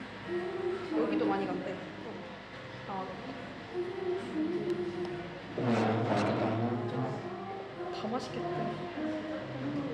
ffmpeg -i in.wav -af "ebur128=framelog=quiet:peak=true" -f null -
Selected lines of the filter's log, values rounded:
Integrated loudness:
  I:         -35.0 LUFS
  Threshold: -45.0 LUFS
Loudness range:
  LRA:         4.9 LU
  Threshold: -54.9 LUFS
  LRA low:   -37.7 LUFS
  LRA high:  -32.8 LUFS
True peak:
  Peak:      -18.0 dBFS